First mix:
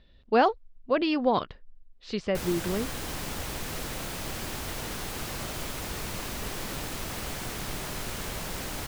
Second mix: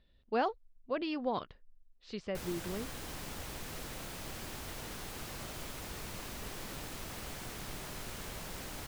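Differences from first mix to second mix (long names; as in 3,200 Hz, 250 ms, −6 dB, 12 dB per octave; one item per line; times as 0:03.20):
speech −10.0 dB
background −8.5 dB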